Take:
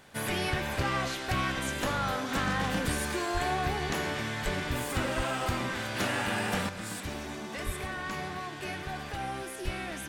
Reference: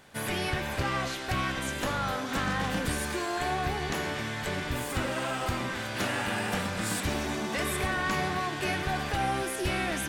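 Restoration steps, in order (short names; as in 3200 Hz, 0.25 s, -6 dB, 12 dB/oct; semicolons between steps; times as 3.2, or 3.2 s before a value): de-click; de-plosive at 3.33/4.44/5.16/7.65/9.64; gain correction +7 dB, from 6.69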